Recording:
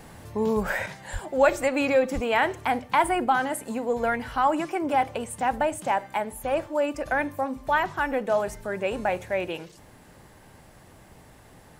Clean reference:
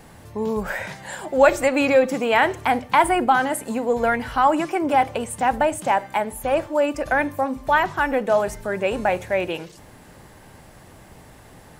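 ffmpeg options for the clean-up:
-filter_complex "[0:a]asplit=3[a][b][c];[a]afade=t=out:st=1.12:d=0.02[d];[b]highpass=f=140:w=0.5412,highpass=f=140:w=1.3066,afade=t=in:st=1.12:d=0.02,afade=t=out:st=1.24:d=0.02[e];[c]afade=t=in:st=1.24:d=0.02[f];[d][e][f]amix=inputs=3:normalize=0,asplit=3[g][h][i];[g]afade=t=out:st=2.14:d=0.02[j];[h]highpass=f=140:w=0.5412,highpass=f=140:w=1.3066,afade=t=in:st=2.14:d=0.02,afade=t=out:st=2.26:d=0.02[k];[i]afade=t=in:st=2.26:d=0.02[l];[j][k][l]amix=inputs=3:normalize=0,asetnsamples=n=441:p=0,asendcmd='0.86 volume volume 5dB',volume=0dB"

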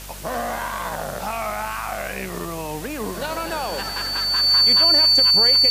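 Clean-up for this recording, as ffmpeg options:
-af "adeclick=t=4,bandreject=f=48.7:t=h:w=4,bandreject=f=97.4:t=h:w=4,bandreject=f=146.1:t=h:w=4,bandreject=f=194.8:t=h:w=4,bandreject=f=243.5:t=h:w=4,bandreject=f=4.5k:w=30,afwtdn=0.013"

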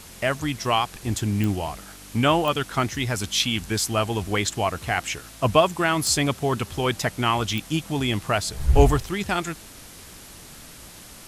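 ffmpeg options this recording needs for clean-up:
-af "adeclick=t=4,afftdn=nr=26:nf=-44"

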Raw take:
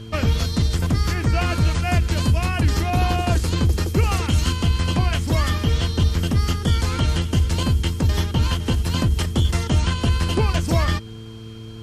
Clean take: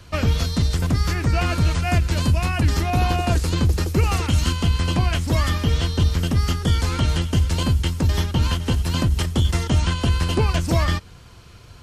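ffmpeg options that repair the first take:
-af "bandreject=f=111.2:t=h:w=4,bandreject=f=222.4:t=h:w=4,bandreject=f=333.6:t=h:w=4,bandreject=f=444.8:t=h:w=4,bandreject=f=3.2k:w=30"

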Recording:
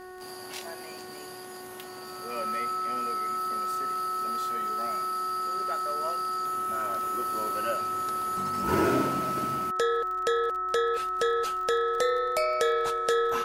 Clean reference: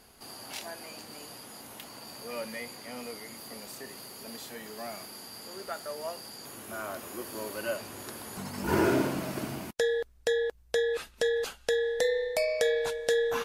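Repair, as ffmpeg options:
-af "adeclick=t=4,bandreject=f=368.4:t=h:w=4,bandreject=f=736.8:t=h:w=4,bandreject=f=1.1052k:t=h:w=4,bandreject=f=1.4736k:t=h:w=4,bandreject=f=1.842k:t=h:w=4,bandreject=f=1.3k:w=30"

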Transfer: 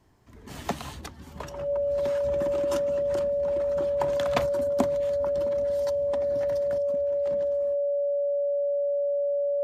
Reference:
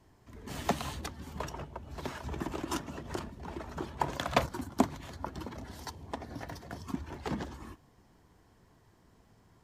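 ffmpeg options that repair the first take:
-af "bandreject=f=570:w=30,asetnsamples=n=441:p=0,asendcmd='6.78 volume volume 10dB',volume=0dB"

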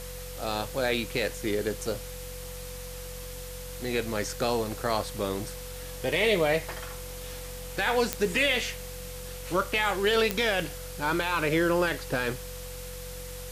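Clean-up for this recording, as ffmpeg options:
-af "adeclick=t=4,bandreject=f=45.3:t=h:w=4,bandreject=f=90.6:t=h:w=4,bandreject=f=135.9:t=h:w=4,bandreject=f=181.2:t=h:w=4,bandreject=f=500:w=30,afwtdn=0.0071"

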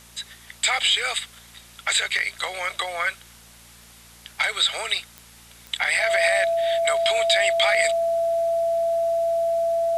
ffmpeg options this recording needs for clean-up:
-af "adeclick=t=4,bandreject=f=57.8:t=h:w=4,bandreject=f=115.6:t=h:w=4,bandreject=f=173.4:t=h:w=4,bandreject=f=231.2:t=h:w=4,bandreject=f=670:w=30,afftdn=nr=20:nf=-49"

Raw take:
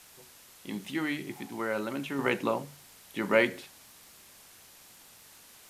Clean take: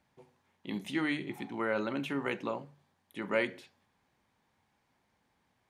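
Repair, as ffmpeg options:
-af "adeclick=t=4,afwtdn=0.0022,asetnsamples=n=441:p=0,asendcmd='2.19 volume volume -6.5dB',volume=0dB"

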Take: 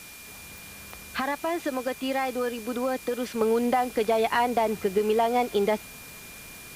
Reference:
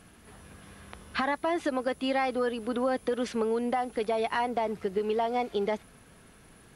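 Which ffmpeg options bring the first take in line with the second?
-af "adeclick=t=4,bandreject=f=2.4k:w=30,afwtdn=0.0056,asetnsamples=n=441:p=0,asendcmd='3.41 volume volume -5dB',volume=0dB"

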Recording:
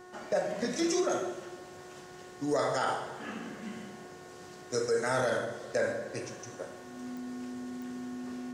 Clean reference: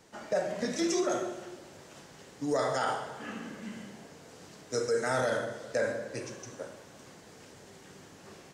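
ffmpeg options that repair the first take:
-af "adeclick=t=4,bandreject=f=363.6:t=h:w=4,bandreject=f=727.2:t=h:w=4,bandreject=f=1.0908k:t=h:w=4,bandreject=f=1.4544k:t=h:w=4,bandreject=f=1.818k:t=h:w=4,bandreject=f=250:w=30"

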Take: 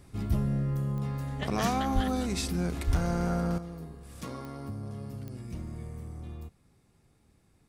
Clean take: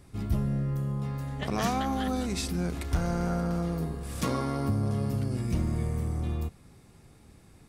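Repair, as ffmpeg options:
-filter_complex "[0:a]adeclick=t=4,asplit=3[a][b][c];[a]afade=t=out:st=1.94:d=0.02[d];[b]highpass=f=140:w=0.5412,highpass=f=140:w=1.3066,afade=t=in:st=1.94:d=0.02,afade=t=out:st=2.06:d=0.02[e];[c]afade=t=in:st=2.06:d=0.02[f];[d][e][f]amix=inputs=3:normalize=0,asplit=3[g][h][i];[g]afade=t=out:st=2.86:d=0.02[j];[h]highpass=f=140:w=0.5412,highpass=f=140:w=1.3066,afade=t=in:st=2.86:d=0.02,afade=t=out:st=2.98:d=0.02[k];[i]afade=t=in:st=2.98:d=0.02[l];[j][k][l]amix=inputs=3:normalize=0,asetnsamples=n=441:p=0,asendcmd='3.58 volume volume 10.5dB',volume=0dB"

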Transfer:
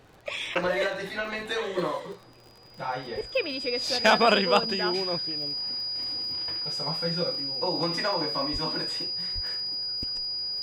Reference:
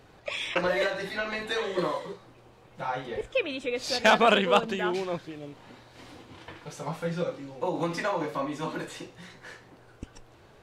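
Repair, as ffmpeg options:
-filter_complex "[0:a]adeclick=t=4,bandreject=f=4.9k:w=30,asplit=3[a][b][c];[a]afade=t=out:st=8.52:d=0.02[d];[b]highpass=f=140:w=0.5412,highpass=f=140:w=1.3066,afade=t=in:st=8.52:d=0.02,afade=t=out:st=8.64:d=0.02[e];[c]afade=t=in:st=8.64:d=0.02[f];[d][e][f]amix=inputs=3:normalize=0,asplit=3[g][h][i];[g]afade=t=out:st=9.34:d=0.02[j];[h]highpass=f=140:w=0.5412,highpass=f=140:w=1.3066,afade=t=in:st=9.34:d=0.02,afade=t=out:st=9.46:d=0.02[k];[i]afade=t=in:st=9.46:d=0.02[l];[j][k][l]amix=inputs=3:normalize=0"

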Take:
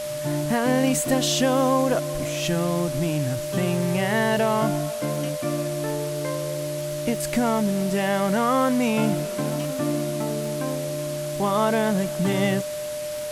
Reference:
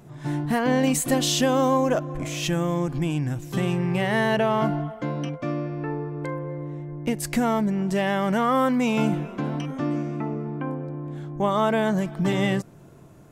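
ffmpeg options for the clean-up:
-af "adeclick=t=4,bandreject=f=600:w=30,afwtdn=0.014"

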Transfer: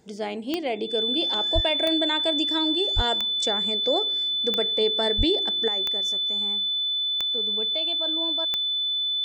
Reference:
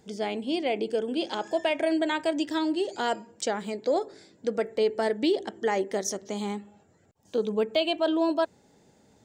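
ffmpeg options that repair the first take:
-filter_complex "[0:a]adeclick=t=4,bandreject=f=3.5k:w=30,asplit=3[a][b][c];[a]afade=t=out:st=1.54:d=0.02[d];[b]highpass=f=140:w=0.5412,highpass=f=140:w=1.3066,afade=t=in:st=1.54:d=0.02,afade=t=out:st=1.66:d=0.02[e];[c]afade=t=in:st=1.66:d=0.02[f];[d][e][f]amix=inputs=3:normalize=0,asplit=3[g][h][i];[g]afade=t=out:st=2.95:d=0.02[j];[h]highpass=f=140:w=0.5412,highpass=f=140:w=1.3066,afade=t=in:st=2.95:d=0.02,afade=t=out:st=3.07:d=0.02[k];[i]afade=t=in:st=3.07:d=0.02[l];[j][k][l]amix=inputs=3:normalize=0,asplit=3[m][n][o];[m]afade=t=out:st=5.17:d=0.02[p];[n]highpass=f=140:w=0.5412,highpass=f=140:w=1.3066,afade=t=in:st=5.17:d=0.02,afade=t=out:st=5.29:d=0.02[q];[o]afade=t=in:st=5.29:d=0.02[r];[p][q][r]amix=inputs=3:normalize=0,asetnsamples=n=441:p=0,asendcmd='5.68 volume volume 10dB',volume=0dB"

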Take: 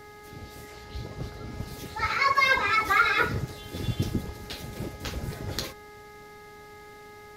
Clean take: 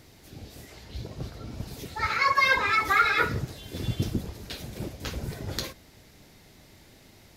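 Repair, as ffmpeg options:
-af "bandreject=f=417.4:t=h:w=4,bandreject=f=834.8:t=h:w=4,bandreject=f=1.2522k:t=h:w=4,bandreject=f=1.6696k:t=h:w=4,bandreject=f=2.087k:t=h:w=4"

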